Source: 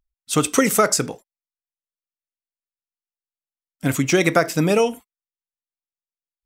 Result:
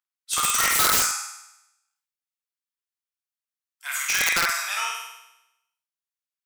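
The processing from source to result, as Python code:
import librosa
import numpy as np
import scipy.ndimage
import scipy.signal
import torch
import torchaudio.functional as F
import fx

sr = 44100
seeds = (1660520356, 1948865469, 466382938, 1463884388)

y = fx.spec_trails(x, sr, decay_s=0.46)
y = scipy.signal.sosfilt(scipy.signal.butter(6, 1000.0, 'highpass', fs=sr, output='sos'), y)
y = fx.room_flutter(y, sr, wall_m=8.6, rt60_s=0.88)
y = (np.mod(10.0 ** (10.0 / 20.0) * y + 1.0, 2.0) - 1.0) / 10.0 ** (10.0 / 20.0)
y = fx.sustainer(y, sr, db_per_s=70.0)
y = y * librosa.db_to_amplitude(-3.5)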